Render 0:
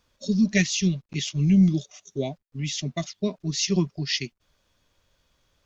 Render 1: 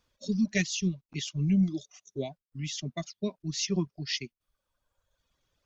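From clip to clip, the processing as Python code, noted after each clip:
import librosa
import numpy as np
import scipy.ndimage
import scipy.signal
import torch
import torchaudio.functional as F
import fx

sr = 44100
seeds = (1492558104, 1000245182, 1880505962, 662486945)

y = fx.dereverb_blind(x, sr, rt60_s=1.2)
y = y * 10.0 ** (-5.5 / 20.0)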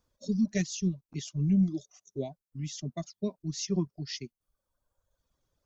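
y = fx.peak_eq(x, sr, hz=2600.0, db=-11.0, octaves=1.7)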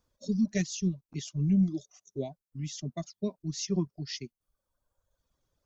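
y = x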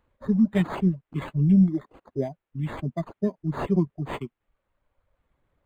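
y = np.interp(np.arange(len(x)), np.arange(len(x))[::8], x[::8])
y = y * 10.0 ** (7.0 / 20.0)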